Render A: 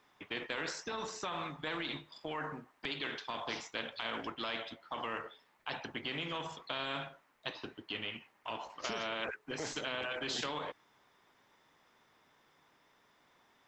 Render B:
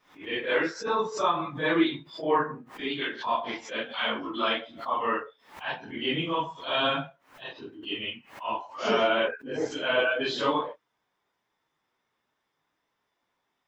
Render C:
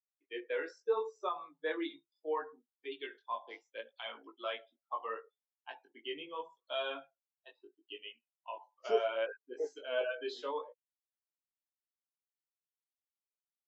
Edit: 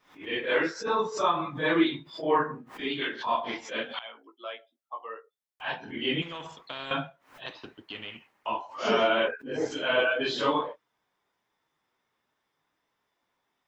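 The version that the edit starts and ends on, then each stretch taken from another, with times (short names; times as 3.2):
B
3.99–5.6 from C
6.22–6.91 from A
7.46–8.46 from A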